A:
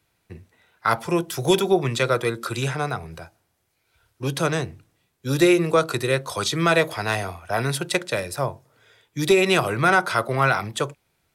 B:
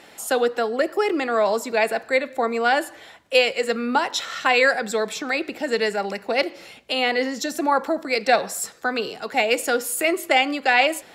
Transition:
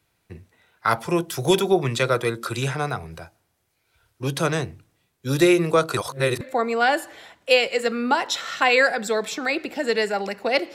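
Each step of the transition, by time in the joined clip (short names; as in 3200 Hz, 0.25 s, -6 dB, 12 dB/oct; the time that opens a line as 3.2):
A
5.97–6.41 reverse
6.41 switch to B from 2.25 s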